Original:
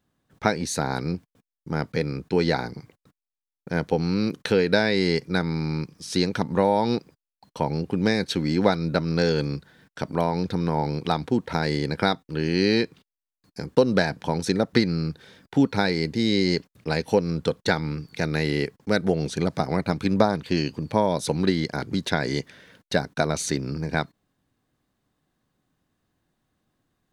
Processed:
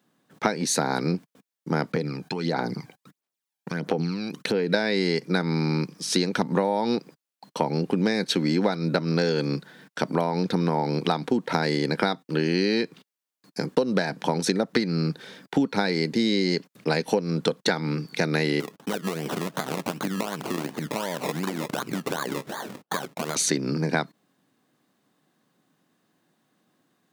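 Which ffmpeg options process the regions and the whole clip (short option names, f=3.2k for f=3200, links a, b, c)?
-filter_complex "[0:a]asettb=1/sr,asplit=3[a][b][c];[a]atrim=end=1.924[d];[b]atrim=start=1.92:end=4.74,asetpts=PTS-STARTPTS,afade=t=in:d=0.004:c=qsin,afade=t=out:st=2.816:d=0.004:c=qsin,acompressor=threshold=-31dB:ratio=6:attack=3.2:release=140:knee=1:detection=peak,aphaser=in_gain=1:out_gain=1:delay=1.3:decay=0.57:speed=1.5:type=sinusoidal[e];[c]atrim=start=4.736[f];[d][e]acrossfade=d=0.004:c1=hsin:c2=qsin[g];[g][f]acrossfade=d=0.004:c1=qsin:c2=hsin,asettb=1/sr,asplit=3[h][i][j];[h]atrim=end=18.604[k];[i]atrim=start=18.6:end=23.36,asetpts=PTS-STARTPTS,afade=t=in:d=0.004:c=qsin,afade=t=out:st=4.756:d=0.004:c=qsin,equalizer=f=1.7k:t=o:w=0.94:g=13.5,acompressor=threshold=-29dB:ratio=16:attack=3.2:release=140:knee=1:detection=peak,acrusher=samples=23:mix=1:aa=0.000001:lfo=1:lforange=13.8:lforate=2.7[l];[j]atrim=start=23.356[m];[k][l]acrossfade=d=0.004:c1=hsin:c2=qsin[n];[n][m]acrossfade=d=0.004:c1=qsin:c2=hsin,highpass=f=160:w=0.5412,highpass=f=160:w=1.3066,acompressor=threshold=-26dB:ratio=6,volume=6.5dB"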